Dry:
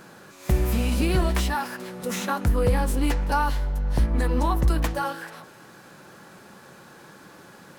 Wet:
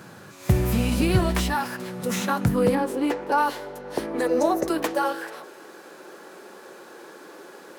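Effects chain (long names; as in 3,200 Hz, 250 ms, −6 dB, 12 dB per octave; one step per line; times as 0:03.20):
0:02.75–0:03.38: high-shelf EQ 3,000 Hz −9.5 dB
high-pass filter sweep 100 Hz → 380 Hz, 0:02.33–0:02.89
0:04.26–0:04.67: thirty-one-band graphic EQ 630 Hz +10 dB, 1,000 Hz −9 dB, 3,150 Hz −9 dB, 6,300 Hz +10 dB
level +1.5 dB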